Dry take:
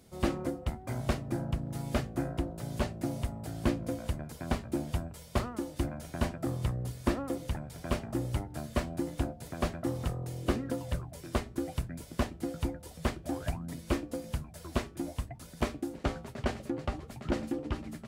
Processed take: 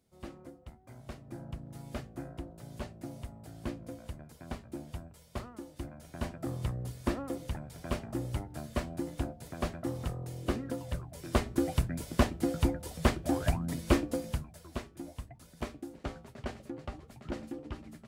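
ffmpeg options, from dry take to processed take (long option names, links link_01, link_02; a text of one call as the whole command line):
ffmpeg -i in.wav -af "volume=5dB,afade=type=in:start_time=1.05:duration=0.45:silence=0.473151,afade=type=in:start_time=5.95:duration=0.63:silence=0.473151,afade=type=in:start_time=11.09:duration=0.41:silence=0.421697,afade=type=out:start_time=14.04:duration=0.59:silence=0.251189" out.wav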